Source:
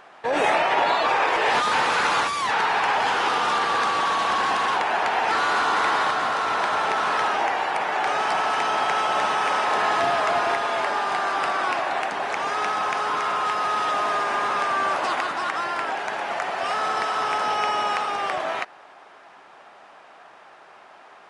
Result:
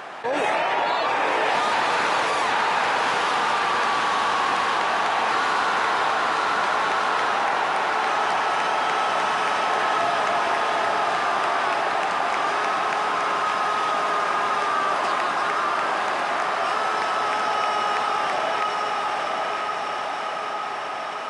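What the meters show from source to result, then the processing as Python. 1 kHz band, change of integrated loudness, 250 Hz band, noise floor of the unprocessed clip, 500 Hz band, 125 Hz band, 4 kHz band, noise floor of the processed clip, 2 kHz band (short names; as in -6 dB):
+0.5 dB, 0.0 dB, +0.5 dB, -48 dBFS, +1.0 dB, +0.5 dB, +0.5 dB, -28 dBFS, +0.5 dB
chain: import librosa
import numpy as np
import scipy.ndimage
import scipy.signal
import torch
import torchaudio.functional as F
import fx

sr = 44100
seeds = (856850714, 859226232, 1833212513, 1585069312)

y = scipy.signal.sosfilt(scipy.signal.butter(2, 66.0, 'highpass', fs=sr, output='sos'), x)
y = fx.echo_diffused(y, sr, ms=939, feedback_pct=59, wet_db=-3)
y = fx.env_flatten(y, sr, amount_pct=50)
y = y * 10.0 ** (-3.5 / 20.0)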